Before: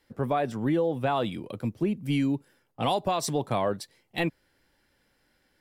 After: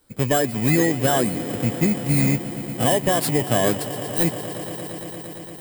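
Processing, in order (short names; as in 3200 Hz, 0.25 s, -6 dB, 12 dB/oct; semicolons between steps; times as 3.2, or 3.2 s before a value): FFT order left unsorted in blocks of 16 samples; swelling echo 0.115 s, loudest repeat 5, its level -17.5 dB; formant shift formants -3 st; gain +7 dB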